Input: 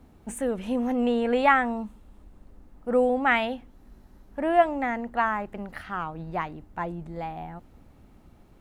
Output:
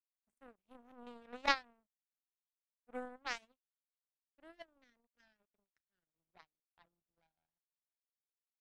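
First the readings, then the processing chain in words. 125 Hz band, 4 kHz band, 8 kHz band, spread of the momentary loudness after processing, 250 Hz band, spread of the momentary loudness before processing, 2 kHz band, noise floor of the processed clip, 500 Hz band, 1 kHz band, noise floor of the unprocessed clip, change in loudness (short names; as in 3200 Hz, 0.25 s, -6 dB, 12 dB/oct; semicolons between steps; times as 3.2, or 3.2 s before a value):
under -35 dB, -6.5 dB, n/a, 23 LU, -28.0 dB, 17 LU, -16.0 dB, under -85 dBFS, -26.0 dB, -20.0 dB, -55 dBFS, -13.5 dB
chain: spectral gain 3.39–6.26, 680–1400 Hz -28 dB; power-law curve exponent 3; gain -4.5 dB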